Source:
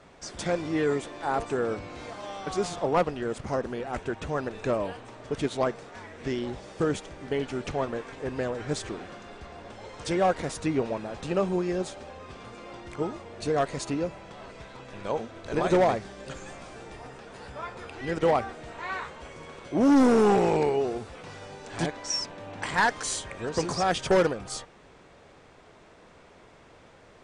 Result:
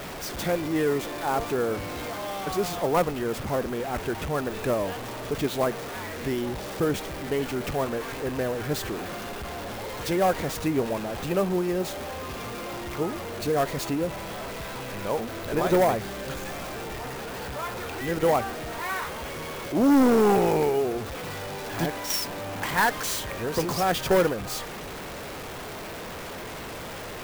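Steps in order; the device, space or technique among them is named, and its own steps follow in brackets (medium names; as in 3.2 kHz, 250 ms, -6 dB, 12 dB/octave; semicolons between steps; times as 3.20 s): early CD player with a faulty converter (jump at every zero crossing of -32 dBFS; sampling jitter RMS 0.024 ms)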